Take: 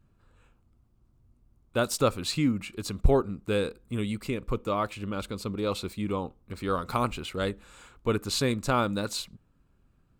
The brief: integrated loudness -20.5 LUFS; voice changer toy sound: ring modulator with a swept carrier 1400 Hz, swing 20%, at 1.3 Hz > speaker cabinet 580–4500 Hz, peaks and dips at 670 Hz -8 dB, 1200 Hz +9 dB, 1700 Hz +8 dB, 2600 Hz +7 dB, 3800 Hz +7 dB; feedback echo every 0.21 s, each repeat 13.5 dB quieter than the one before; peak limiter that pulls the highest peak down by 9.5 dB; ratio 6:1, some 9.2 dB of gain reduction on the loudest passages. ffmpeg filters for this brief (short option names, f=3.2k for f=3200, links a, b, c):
-af "acompressor=threshold=-26dB:ratio=6,alimiter=level_in=1.5dB:limit=-24dB:level=0:latency=1,volume=-1.5dB,aecho=1:1:210|420:0.211|0.0444,aeval=exprs='val(0)*sin(2*PI*1400*n/s+1400*0.2/1.3*sin(2*PI*1.3*n/s))':c=same,highpass=580,equalizer=f=670:t=q:w=4:g=-8,equalizer=f=1.2k:t=q:w=4:g=9,equalizer=f=1.7k:t=q:w=4:g=8,equalizer=f=2.6k:t=q:w=4:g=7,equalizer=f=3.8k:t=q:w=4:g=7,lowpass=f=4.5k:w=0.5412,lowpass=f=4.5k:w=1.3066,volume=10.5dB"